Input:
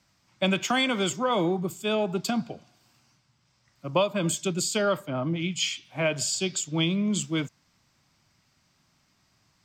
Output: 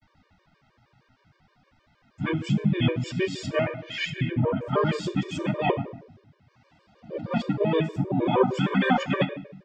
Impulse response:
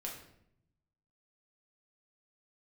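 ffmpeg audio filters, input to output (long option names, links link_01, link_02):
-filter_complex "[0:a]areverse,lowpass=2600,asplit=2[link_01][link_02];[link_02]acompressor=threshold=-38dB:ratio=6,volume=-1dB[link_03];[link_01][link_03]amix=inputs=2:normalize=0,asplit=2[link_04][link_05];[link_05]asetrate=33038,aresample=44100,atempo=1.33484,volume=0dB[link_06];[link_04][link_06]amix=inputs=2:normalize=0,flanger=delay=3.3:depth=5.2:regen=53:speed=0.55:shape=sinusoidal,asplit=2[link_07][link_08];[1:a]atrim=start_sample=2205[link_09];[link_08][link_09]afir=irnorm=-1:irlink=0,volume=-0.5dB[link_10];[link_07][link_10]amix=inputs=2:normalize=0,afftfilt=real='re*gt(sin(2*PI*6.4*pts/sr)*(1-2*mod(floor(b*sr/1024/310),2)),0)':imag='im*gt(sin(2*PI*6.4*pts/sr)*(1-2*mod(floor(b*sr/1024/310),2)),0)':win_size=1024:overlap=0.75,volume=1dB"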